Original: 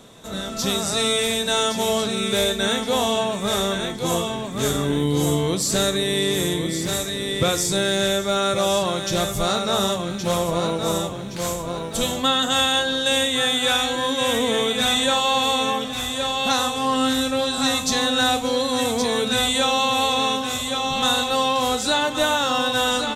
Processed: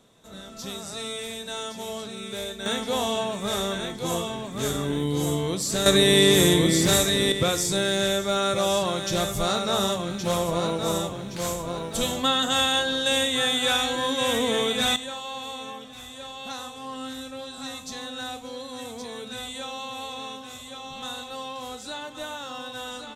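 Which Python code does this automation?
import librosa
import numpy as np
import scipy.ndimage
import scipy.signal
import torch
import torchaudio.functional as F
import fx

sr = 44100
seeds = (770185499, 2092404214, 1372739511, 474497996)

y = fx.gain(x, sr, db=fx.steps((0.0, -12.5), (2.66, -5.0), (5.86, 4.5), (7.32, -3.0), (14.96, -15.0)))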